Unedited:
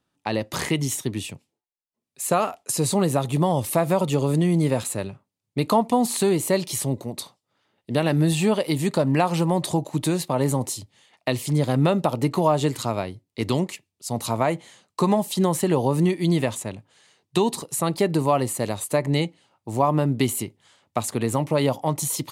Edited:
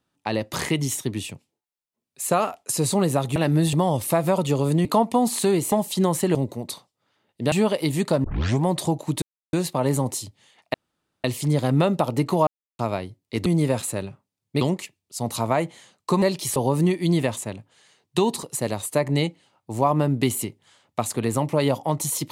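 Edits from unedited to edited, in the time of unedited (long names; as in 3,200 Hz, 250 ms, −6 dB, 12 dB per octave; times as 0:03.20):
0:04.48–0:05.63: move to 0:13.51
0:06.50–0:06.84: swap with 0:15.12–0:15.75
0:08.01–0:08.38: move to 0:03.36
0:09.10: tape start 0.40 s
0:10.08: splice in silence 0.31 s
0:11.29: splice in room tone 0.50 s
0:12.52–0:12.84: silence
0:17.76–0:18.55: remove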